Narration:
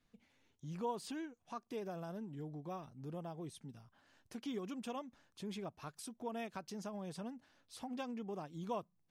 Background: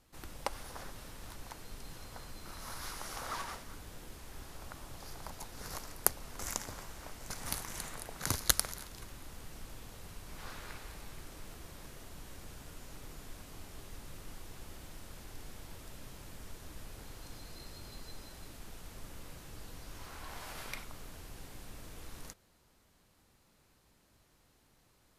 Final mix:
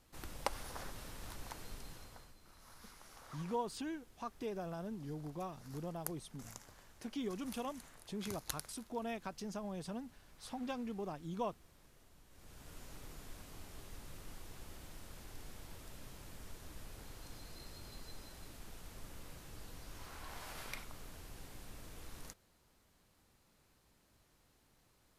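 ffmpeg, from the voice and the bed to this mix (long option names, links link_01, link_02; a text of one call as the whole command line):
ffmpeg -i stem1.wav -i stem2.wav -filter_complex "[0:a]adelay=2700,volume=1.5dB[link_01];[1:a]volume=11.5dB,afade=type=out:start_time=1.65:duration=0.71:silence=0.188365,afade=type=in:start_time=12.3:duration=0.48:silence=0.251189[link_02];[link_01][link_02]amix=inputs=2:normalize=0" out.wav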